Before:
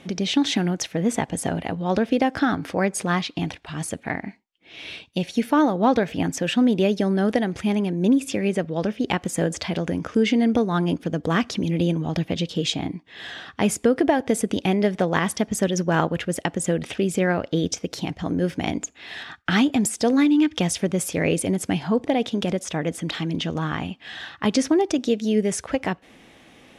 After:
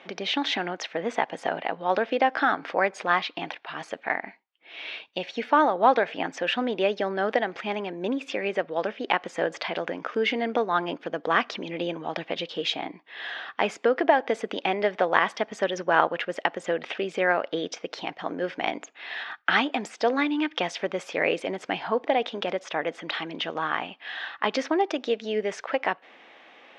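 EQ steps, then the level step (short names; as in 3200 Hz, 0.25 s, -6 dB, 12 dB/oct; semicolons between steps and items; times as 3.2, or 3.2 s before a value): HPF 650 Hz 12 dB/oct; air absorption 190 m; high shelf 5800 Hz -9 dB; +5.0 dB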